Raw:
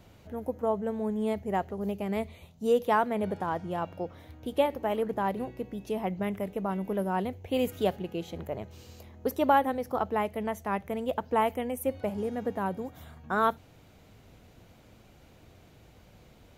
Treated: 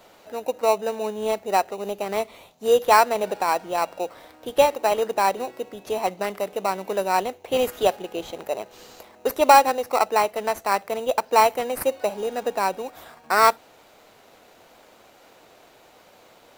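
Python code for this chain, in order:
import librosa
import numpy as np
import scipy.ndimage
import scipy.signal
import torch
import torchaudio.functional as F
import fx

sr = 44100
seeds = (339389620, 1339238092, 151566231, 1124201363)

p1 = scipy.signal.sosfilt(scipy.signal.butter(2, 570.0, 'highpass', fs=sr, output='sos'), x)
p2 = fx.sample_hold(p1, sr, seeds[0], rate_hz=3300.0, jitter_pct=0)
p3 = p1 + (p2 * 10.0 ** (-3.5 / 20.0))
y = p3 * 10.0 ** (7.5 / 20.0)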